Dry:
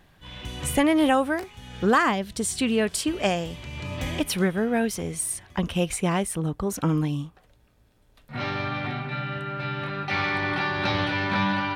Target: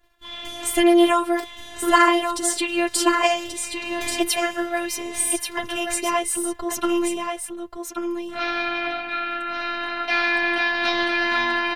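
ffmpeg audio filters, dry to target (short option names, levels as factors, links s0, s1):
-af "agate=range=0.224:threshold=0.00178:ratio=16:detection=peak,equalizer=f=130:w=0.84:g=-13.5,aecho=1:1:6.7:0.67,afftfilt=real='hypot(re,im)*cos(PI*b)':imag='0':win_size=512:overlap=0.75,aecho=1:1:1133:0.501,volume=2.24"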